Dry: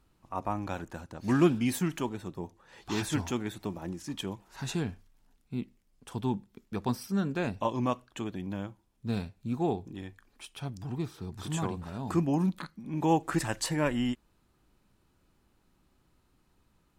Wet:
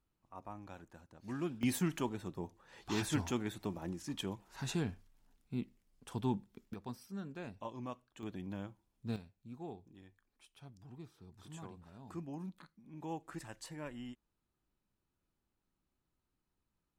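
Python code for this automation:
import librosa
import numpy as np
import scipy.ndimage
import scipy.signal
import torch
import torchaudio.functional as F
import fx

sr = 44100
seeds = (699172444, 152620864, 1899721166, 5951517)

y = fx.gain(x, sr, db=fx.steps((0.0, -15.5), (1.63, -4.0), (6.74, -14.5), (8.23, -7.0), (9.16, -17.0)))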